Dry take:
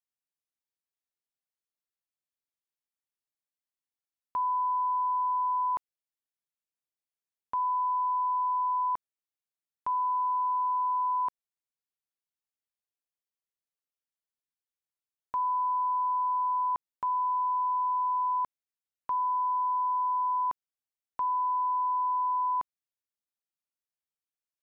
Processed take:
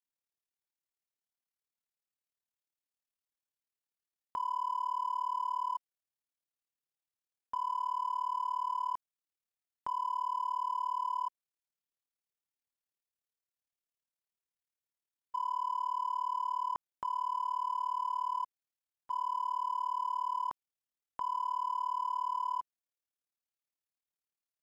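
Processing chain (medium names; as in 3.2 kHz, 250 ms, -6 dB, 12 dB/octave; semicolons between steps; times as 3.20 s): in parallel at -7.5 dB: hard clipper -40 dBFS, distortion -8 dB; on the sum: AM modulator 37 Hz, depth 90%; trim -3 dB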